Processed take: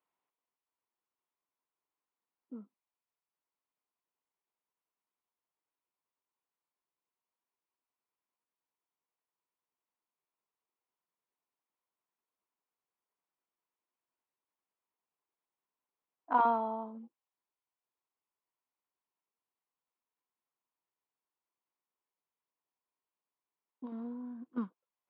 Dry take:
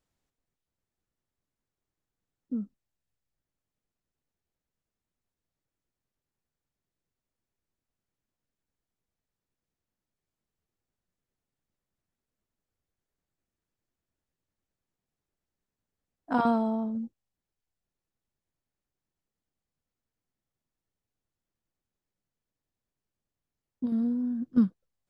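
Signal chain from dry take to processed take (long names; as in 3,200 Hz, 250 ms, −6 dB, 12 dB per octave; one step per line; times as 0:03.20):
loudspeaker in its box 450–2,900 Hz, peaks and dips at 570 Hz −4 dB, 1,000 Hz +9 dB, 1,700 Hz −5 dB
level −2.5 dB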